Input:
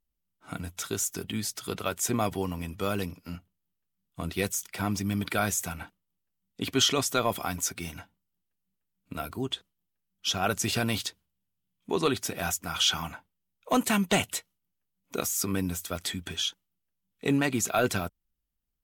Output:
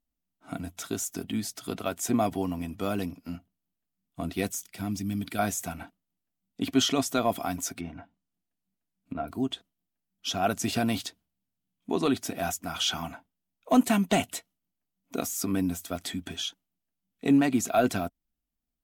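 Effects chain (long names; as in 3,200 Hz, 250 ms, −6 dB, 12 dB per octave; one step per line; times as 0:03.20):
0:04.63–0:05.39: parametric band 830 Hz −10.5 dB 2.6 octaves
0:07.79–0:09.28: treble cut that deepens with the level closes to 1,700 Hz, closed at −37 dBFS
hollow resonant body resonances 260/680 Hz, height 10 dB, ringing for 30 ms
level −3.5 dB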